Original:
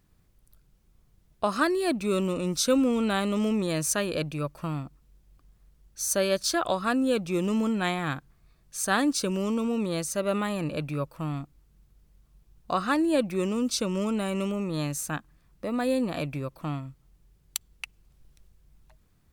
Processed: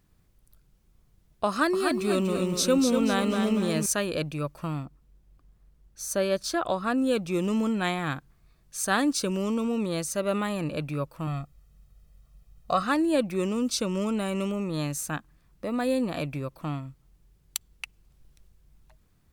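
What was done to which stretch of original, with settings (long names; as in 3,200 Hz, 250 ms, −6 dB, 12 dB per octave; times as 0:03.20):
0:01.49–0:03.86: feedback echo at a low word length 242 ms, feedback 35%, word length 9 bits, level −5.5 dB
0:04.85–0:06.98: high-shelf EQ 2,100 Hz −6 dB
0:11.27–0:12.83: comb filter 1.6 ms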